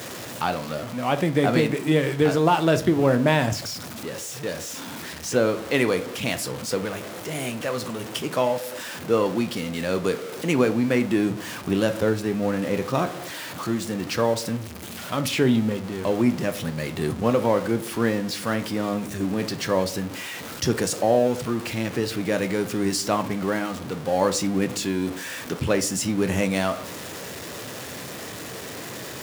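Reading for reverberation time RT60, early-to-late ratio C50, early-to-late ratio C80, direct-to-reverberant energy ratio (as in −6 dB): 0.45 s, 16.0 dB, 20.5 dB, 10.0 dB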